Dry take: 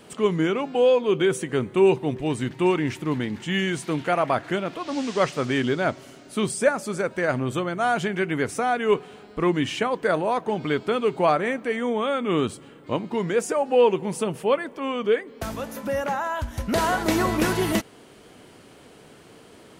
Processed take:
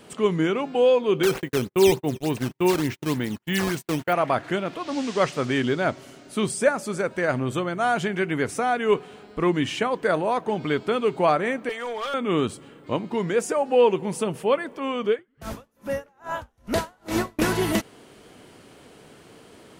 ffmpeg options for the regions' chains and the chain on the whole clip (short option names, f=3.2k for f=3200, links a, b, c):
-filter_complex "[0:a]asettb=1/sr,asplit=3[a][b][c];[a]atrim=end=1.234[d];[b]atrim=start=1.23:end=4.13,asetpts=PTS-STARTPTS,afade=t=in:d=0.004:c=qsin,afade=t=out:st=2.896:d=0.004:c=qsin,agate=range=-41dB:threshold=-33dB:ratio=16:release=100:detection=peak,acrusher=samples=9:mix=1:aa=0.000001:lfo=1:lforange=14.4:lforate=3.4[e];[c]atrim=start=4.126[f];[d][e]acrossfade=d=0.004:c1=hsin:c2=qsin[g];[g][f]acrossfade=d=0.004:c1=qsin:c2=hsin,asettb=1/sr,asplit=3[h][i][j];[h]atrim=end=11.694[k];[i]atrim=start=11.69:end=12.14,asetpts=PTS-STARTPTS,afade=t=in:d=0.004:c=qsin,afade=t=out:st=0.446:d=0.004:c=qsin,highpass=690,aecho=1:1:4.2:0.46,atrim=end_sample=19845,asoftclip=type=hard:threshold=-25.5dB[l];[j]atrim=start=12.136[m];[k][l]acrossfade=d=0.004:c1=hsin:c2=qsin[n];[n][m]acrossfade=d=0.004:c1=qsin:c2=hsin,asettb=1/sr,asplit=3[o][p][q];[o]atrim=end=15.094[r];[p]atrim=start=15.09:end=17.39,asetpts=PTS-STARTPTS,afade=t=in:d=0.004:c=qsin,afade=t=out:st=2.296:d=0.004:c=qsin,asplit=8[s][t][u][v][w][x][y][z];[t]adelay=94,afreqshift=-98,volume=-11dB[aa];[u]adelay=188,afreqshift=-196,volume=-15.2dB[ab];[v]adelay=282,afreqshift=-294,volume=-19.3dB[ac];[w]adelay=376,afreqshift=-392,volume=-23.5dB[ad];[x]adelay=470,afreqshift=-490,volume=-27.6dB[ae];[y]adelay=564,afreqshift=-588,volume=-31.8dB[af];[z]adelay=658,afreqshift=-686,volume=-35.9dB[ag];[s][aa][ab][ac][ad][ae][af][ag]amix=inputs=8:normalize=0,atrim=end_sample=101430,aeval=exprs='val(0)*pow(10,-38*(0.5-0.5*cos(2*PI*2.4*n/s))/20)':c=same[ah];[q]atrim=start=17.386[ai];[r][ah]acrossfade=d=0.004:c1=hsin:c2=qsin[aj];[aj][ai]acrossfade=d=0.004:c1=qsin:c2=hsin"